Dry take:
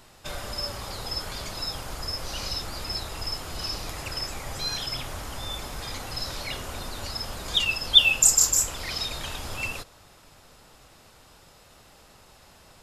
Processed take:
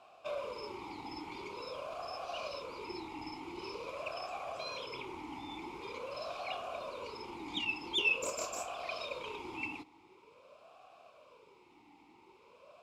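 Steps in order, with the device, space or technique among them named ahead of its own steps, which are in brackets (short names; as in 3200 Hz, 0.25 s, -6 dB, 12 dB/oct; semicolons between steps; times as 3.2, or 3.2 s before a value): talk box (tube stage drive 15 dB, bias 0.55; vowel sweep a-u 0.46 Hz); gain +9.5 dB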